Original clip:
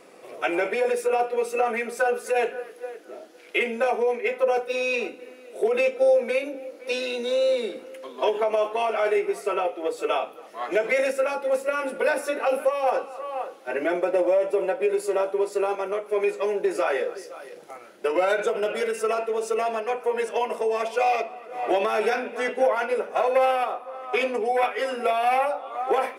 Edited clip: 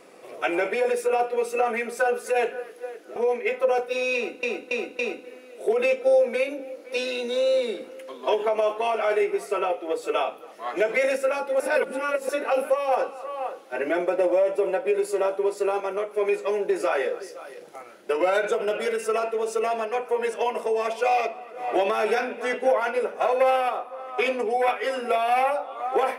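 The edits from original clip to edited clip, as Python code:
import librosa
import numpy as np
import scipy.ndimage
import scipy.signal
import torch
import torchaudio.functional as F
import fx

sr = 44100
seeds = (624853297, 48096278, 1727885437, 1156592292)

y = fx.edit(x, sr, fx.cut(start_s=3.16, length_s=0.79),
    fx.repeat(start_s=4.94, length_s=0.28, count=4),
    fx.reverse_span(start_s=11.55, length_s=0.69), tone=tone)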